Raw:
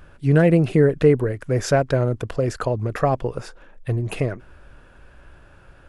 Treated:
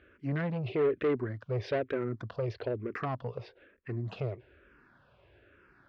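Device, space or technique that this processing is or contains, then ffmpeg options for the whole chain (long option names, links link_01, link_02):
barber-pole phaser into a guitar amplifier: -filter_complex "[0:a]asplit=2[link_01][link_02];[link_02]afreqshift=-1.1[link_03];[link_01][link_03]amix=inputs=2:normalize=1,asoftclip=type=tanh:threshold=-18dB,highpass=100,equalizer=frequency=110:width_type=q:width=4:gain=3,equalizer=frequency=160:width_type=q:width=4:gain=-5,equalizer=frequency=390:width_type=q:width=4:gain=5,equalizer=frequency=830:width_type=q:width=4:gain=-4,equalizer=frequency=2100:width_type=q:width=4:gain=4,lowpass=frequency=4300:width=0.5412,lowpass=frequency=4300:width=1.3066,volume=-7dB"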